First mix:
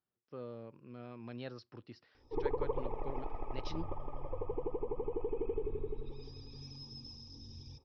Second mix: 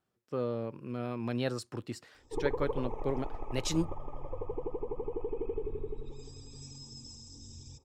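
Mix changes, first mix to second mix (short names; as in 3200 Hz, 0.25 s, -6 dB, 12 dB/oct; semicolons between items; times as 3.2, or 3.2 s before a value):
speech +11.0 dB; master: remove elliptic low-pass 5300 Hz, stop band 40 dB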